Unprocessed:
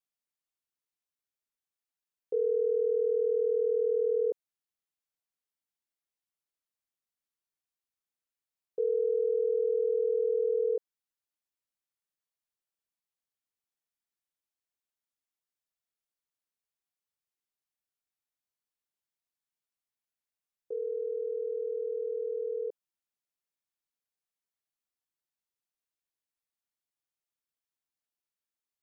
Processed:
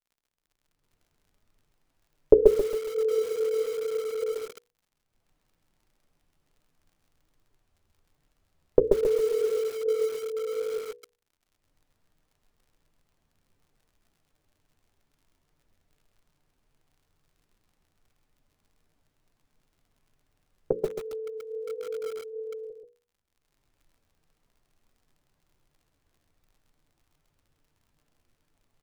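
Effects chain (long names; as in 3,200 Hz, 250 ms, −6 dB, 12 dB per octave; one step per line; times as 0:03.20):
camcorder AGC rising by 32 dB per second
multi-voice chorus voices 4, 1.2 Hz, delay 10 ms, depth 3.5 ms
noise gate −27 dBFS, range −7 dB
spectral tilt −4.5 dB per octave
mains-hum notches 60/120/180/240/300/360/420/480/540 Hz
surface crackle 43 per second −55 dBFS
on a send: single-tap delay 132 ms −5 dB
on the sum: feedback echo at a low word length 137 ms, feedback 35%, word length 6 bits, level −6.5 dB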